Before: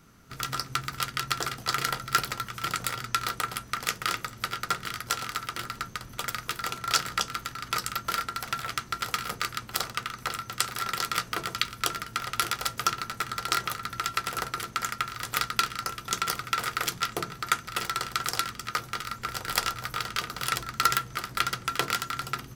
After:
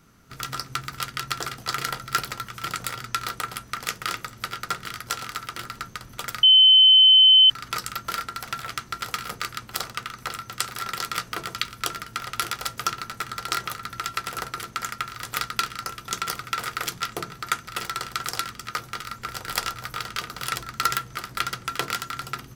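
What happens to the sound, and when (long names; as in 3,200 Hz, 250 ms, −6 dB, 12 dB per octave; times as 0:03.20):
0:06.43–0:07.50: beep over 3,060 Hz −10 dBFS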